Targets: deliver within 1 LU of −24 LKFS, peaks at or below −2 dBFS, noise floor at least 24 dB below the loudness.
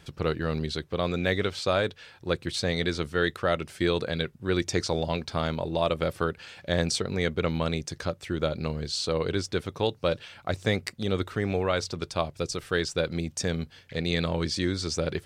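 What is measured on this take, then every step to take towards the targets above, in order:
integrated loudness −29.0 LKFS; sample peak −10.5 dBFS; target loudness −24.0 LKFS
→ level +5 dB

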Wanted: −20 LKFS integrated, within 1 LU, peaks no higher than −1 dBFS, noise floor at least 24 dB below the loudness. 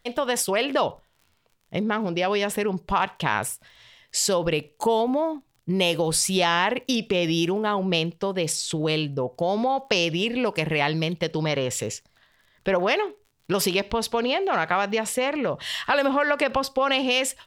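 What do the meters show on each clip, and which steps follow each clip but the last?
crackle rate 33 per second; integrated loudness −24.0 LKFS; sample peak −7.5 dBFS; target loudness −20.0 LKFS
→ click removal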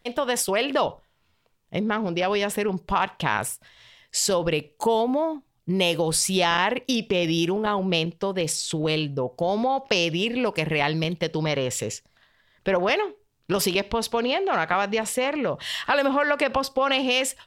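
crackle rate 0.11 per second; integrated loudness −24.0 LKFS; sample peak −7.5 dBFS; target loudness −20.0 LKFS
→ level +4 dB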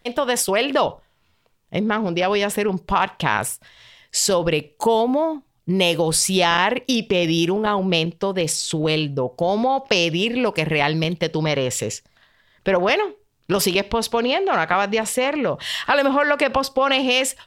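integrated loudness −20.0 LKFS; sample peak −3.5 dBFS; background noise floor −63 dBFS

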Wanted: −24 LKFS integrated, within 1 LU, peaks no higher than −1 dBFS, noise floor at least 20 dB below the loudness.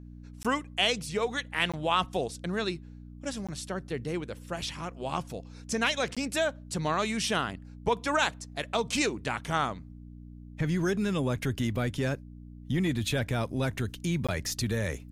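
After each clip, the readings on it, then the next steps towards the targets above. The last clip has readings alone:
number of dropouts 5; longest dropout 16 ms; mains hum 60 Hz; hum harmonics up to 300 Hz; level of the hum −45 dBFS; integrated loudness −30.5 LKFS; sample peak −12.0 dBFS; target loudness −24.0 LKFS
→ repair the gap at 0:00.43/0:01.72/0:03.47/0:06.15/0:14.27, 16 ms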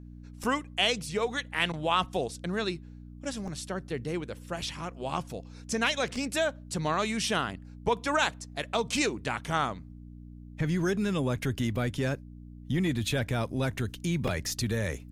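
number of dropouts 0; mains hum 60 Hz; hum harmonics up to 300 Hz; level of the hum −45 dBFS
→ hum removal 60 Hz, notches 5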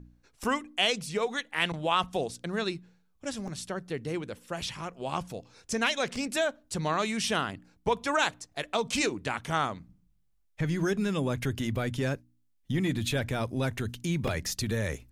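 mains hum none found; integrated loudness −30.5 LKFS; sample peak −12.5 dBFS; target loudness −24.0 LKFS
→ level +6.5 dB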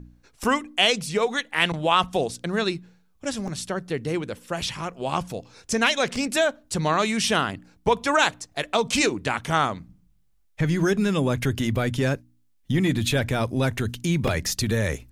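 integrated loudness −24.0 LKFS; sample peak −6.0 dBFS; background noise floor −62 dBFS

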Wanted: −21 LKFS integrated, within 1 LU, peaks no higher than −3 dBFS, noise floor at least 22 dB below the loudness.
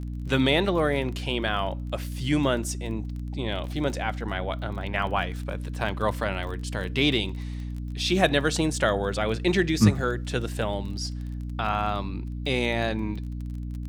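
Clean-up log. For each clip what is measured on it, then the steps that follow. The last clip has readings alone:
crackle rate 22 per second; mains hum 60 Hz; hum harmonics up to 300 Hz; level of the hum −30 dBFS; integrated loudness −27.0 LKFS; sample peak −5.0 dBFS; target loudness −21.0 LKFS
→ click removal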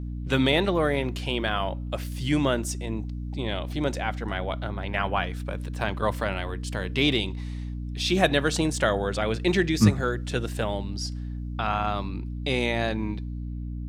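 crackle rate 0 per second; mains hum 60 Hz; hum harmonics up to 300 Hz; level of the hum −30 dBFS
→ mains-hum notches 60/120/180/240/300 Hz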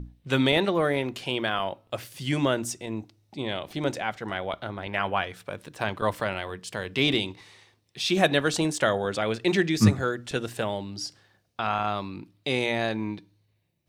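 mains hum none found; integrated loudness −27.5 LKFS; sample peak −5.0 dBFS; target loudness −21.0 LKFS
→ level +6.5 dB
brickwall limiter −3 dBFS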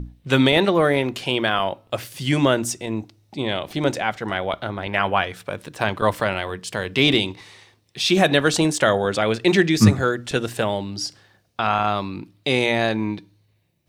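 integrated loudness −21.0 LKFS; sample peak −3.0 dBFS; background noise floor −63 dBFS

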